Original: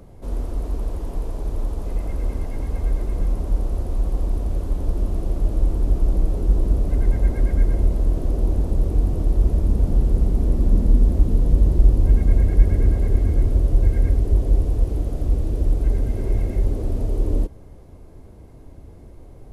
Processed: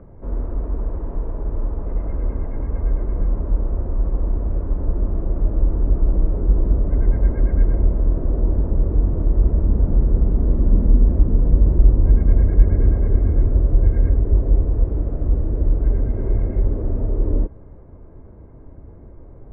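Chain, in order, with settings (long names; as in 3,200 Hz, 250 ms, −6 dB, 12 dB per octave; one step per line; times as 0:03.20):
low-pass filter 1,700 Hz 24 dB per octave
notch filter 750 Hz, Q 12
level +1.5 dB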